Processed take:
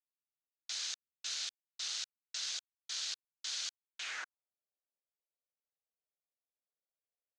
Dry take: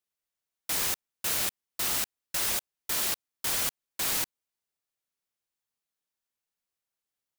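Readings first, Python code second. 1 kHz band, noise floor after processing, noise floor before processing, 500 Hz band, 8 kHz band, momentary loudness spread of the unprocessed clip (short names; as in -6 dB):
-15.5 dB, under -85 dBFS, under -85 dBFS, -24.0 dB, -10.5 dB, 4 LU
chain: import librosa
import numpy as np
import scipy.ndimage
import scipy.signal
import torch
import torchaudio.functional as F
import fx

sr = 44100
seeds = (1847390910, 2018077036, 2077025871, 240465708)

y = fx.wiener(x, sr, points=25)
y = fx.filter_sweep_bandpass(y, sr, from_hz=4100.0, to_hz=570.0, start_s=3.9, end_s=4.54, q=2.2)
y = fx.cabinet(y, sr, low_hz=340.0, low_slope=12, high_hz=7400.0, hz=(960.0, 1500.0, 6400.0), db=(-4, 5, 7))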